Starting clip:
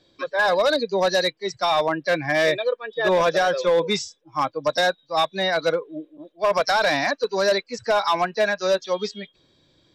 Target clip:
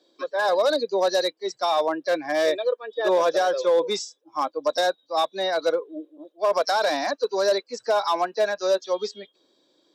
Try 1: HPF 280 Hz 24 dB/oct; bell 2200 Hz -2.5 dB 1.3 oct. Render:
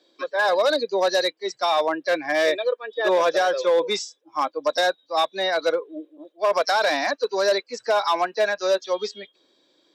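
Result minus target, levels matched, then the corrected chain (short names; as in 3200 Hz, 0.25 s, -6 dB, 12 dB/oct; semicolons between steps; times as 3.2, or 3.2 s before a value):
2000 Hz band +3.5 dB
HPF 280 Hz 24 dB/oct; bell 2200 Hz -9.5 dB 1.3 oct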